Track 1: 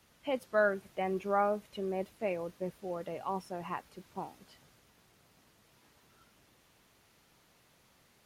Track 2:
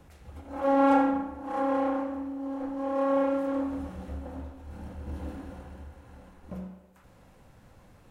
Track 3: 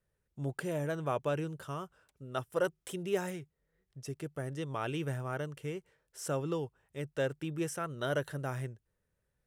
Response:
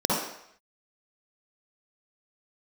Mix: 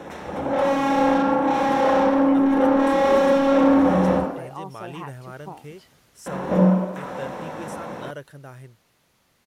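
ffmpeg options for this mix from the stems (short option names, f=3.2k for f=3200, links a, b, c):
-filter_complex "[0:a]acompressor=threshold=-41dB:ratio=2,adelay=1300,volume=2dB[a];[1:a]asplit=2[b][c];[c]highpass=f=720:p=1,volume=36dB,asoftclip=type=tanh:threshold=-10.5dB[d];[b][d]amix=inputs=2:normalize=0,lowpass=f=1.7k:p=1,volume=-6dB,volume=16.5dB,asoftclip=hard,volume=-16.5dB,volume=-8dB,asplit=3[e][f][g];[e]atrim=end=4.2,asetpts=PTS-STARTPTS,afade=t=out:st=4.196:d=0.004:c=hsin[h];[f]atrim=start=4.2:end=6.26,asetpts=PTS-STARTPTS,volume=0[i];[g]atrim=start=6.26,asetpts=PTS-STARTPTS,afade=t=in:d=0.004:c=hsin[j];[h][i][j]concat=n=3:v=0:a=1,asplit=2[k][l];[l]volume=-12dB[m];[2:a]volume=-5dB[n];[3:a]atrim=start_sample=2205[o];[m][o]afir=irnorm=-1:irlink=0[p];[a][k][n][p]amix=inputs=4:normalize=0,dynaudnorm=f=340:g=13:m=3.5dB"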